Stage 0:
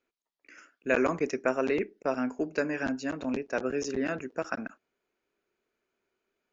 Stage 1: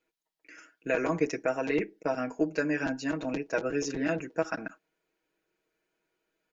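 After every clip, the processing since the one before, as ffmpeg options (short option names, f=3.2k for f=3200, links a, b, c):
-af "alimiter=limit=-18dB:level=0:latency=1:release=132,bandreject=f=1.2k:w=8.2,aecho=1:1:6.3:0.77"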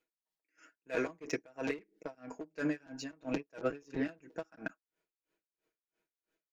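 -af "asoftclip=type=tanh:threshold=-25.5dB,aeval=exprs='0.0531*(cos(1*acos(clip(val(0)/0.0531,-1,1)))-cos(1*PI/2))+0.00944*(cos(3*acos(clip(val(0)/0.0531,-1,1)))-cos(3*PI/2))':c=same,aeval=exprs='val(0)*pow(10,-31*(0.5-0.5*cos(2*PI*3*n/s))/20)':c=same,volume=4dB"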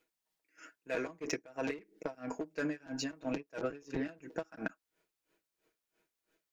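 -af "acompressor=threshold=-40dB:ratio=6,volume=7dB"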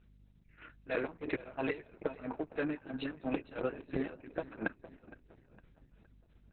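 -af "aeval=exprs='val(0)+0.000794*(sin(2*PI*50*n/s)+sin(2*PI*2*50*n/s)/2+sin(2*PI*3*50*n/s)/3+sin(2*PI*4*50*n/s)/4+sin(2*PI*5*50*n/s)/5)':c=same,aecho=1:1:462|924|1386|1848:0.141|0.065|0.0299|0.0137,volume=2.5dB" -ar 48000 -c:a libopus -b:a 6k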